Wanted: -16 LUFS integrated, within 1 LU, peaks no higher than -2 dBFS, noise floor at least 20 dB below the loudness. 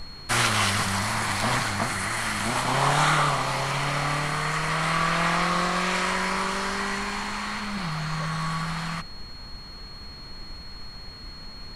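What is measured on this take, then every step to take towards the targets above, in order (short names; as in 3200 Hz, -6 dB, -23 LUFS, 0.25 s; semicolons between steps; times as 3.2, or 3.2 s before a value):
steady tone 4300 Hz; tone level -42 dBFS; noise floor -41 dBFS; noise floor target -45 dBFS; loudness -25.0 LUFS; peak -6.5 dBFS; loudness target -16.0 LUFS
-> notch 4300 Hz, Q 30; noise print and reduce 6 dB; gain +9 dB; limiter -2 dBFS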